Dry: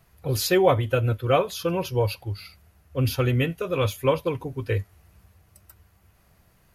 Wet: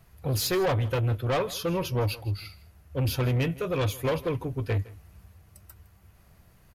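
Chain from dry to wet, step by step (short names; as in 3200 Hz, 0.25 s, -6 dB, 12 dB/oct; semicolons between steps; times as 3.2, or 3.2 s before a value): low shelf 180 Hz +5 dB; soft clip -22 dBFS, distortion -9 dB; echo 0.161 s -20 dB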